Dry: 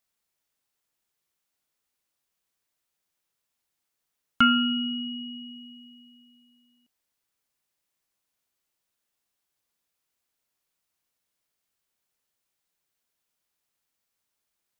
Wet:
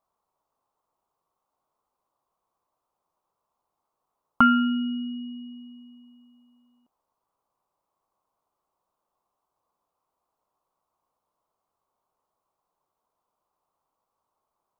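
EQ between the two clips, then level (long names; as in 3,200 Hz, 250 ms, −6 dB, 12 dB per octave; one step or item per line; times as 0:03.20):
drawn EQ curve 250 Hz 0 dB, 1,100 Hz +13 dB, 1,700 Hz −13 dB
+3.0 dB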